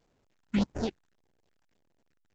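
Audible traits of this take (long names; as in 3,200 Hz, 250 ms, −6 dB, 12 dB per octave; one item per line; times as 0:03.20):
aliases and images of a low sample rate 1,200 Hz, jitter 20%
phaser sweep stages 4, 1.7 Hz, lowest notch 450–4,000 Hz
A-law companding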